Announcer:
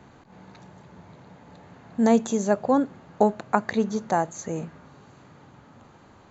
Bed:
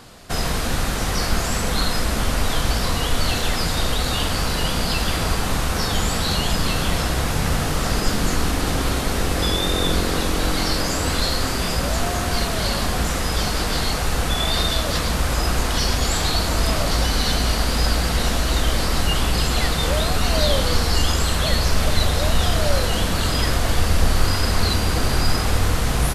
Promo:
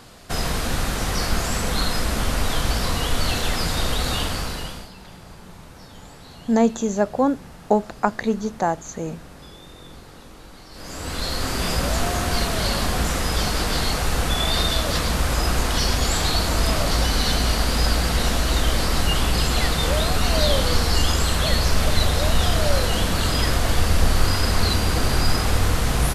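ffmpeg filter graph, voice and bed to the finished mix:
-filter_complex "[0:a]adelay=4500,volume=1.19[s0];[1:a]volume=11.9,afade=t=out:st=4.14:d=0.77:silence=0.0794328,afade=t=in:st=10.71:d=0.99:silence=0.0707946[s1];[s0][s1]amix=inputs=2:normalize=0"

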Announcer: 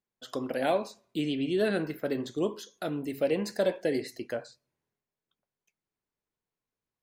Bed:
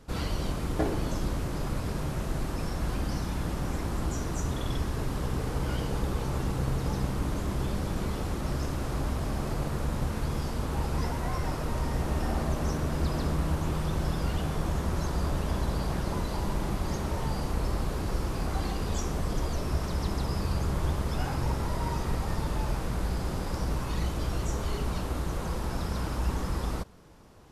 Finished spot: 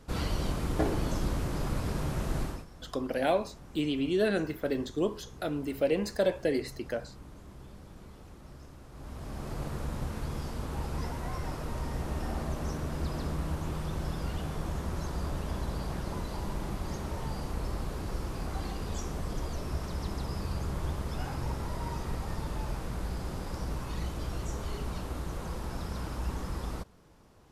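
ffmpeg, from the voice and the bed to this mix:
-filter_complex "[0:a]adelay=2600,volume=1[s0];[1:a]volume=4.47,afade=t=out:st=2.41:d=0.24:silence=0.125893,afade=t=in:st=8.92:d=0.72:silence=0.211349[s1];[s0][s1]amix=inputs=2:normalize=0"

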